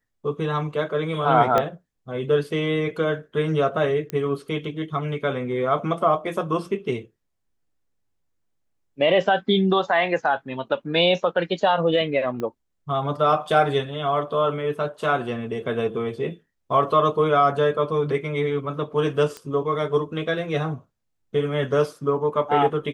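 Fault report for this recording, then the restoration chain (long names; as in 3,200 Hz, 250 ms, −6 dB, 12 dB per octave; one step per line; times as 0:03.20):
0:01.58: click −8 dBFS
0:04.10: click −15 dBFS
0:12.40: click −18 dBFS
0:19.37: click −20 dBFS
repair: click removal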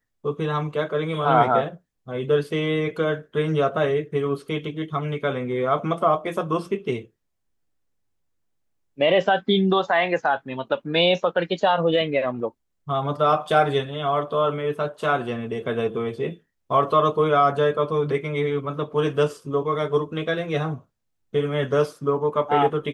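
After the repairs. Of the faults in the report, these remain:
0:01.58: click
0:12.40: click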